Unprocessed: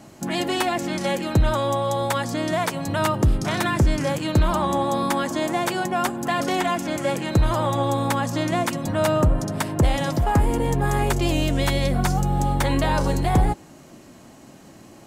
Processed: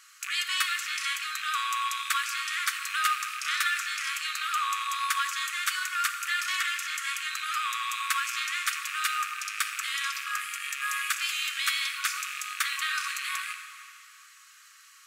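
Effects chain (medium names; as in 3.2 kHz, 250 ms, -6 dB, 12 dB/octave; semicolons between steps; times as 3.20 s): rattle on loud lows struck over -29 dBFS, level -24 dBFS; brick-wall FIR high-pass 1.1 kHz; plate-style reverb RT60 2.7 s, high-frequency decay 0.8×, DRR 6 dB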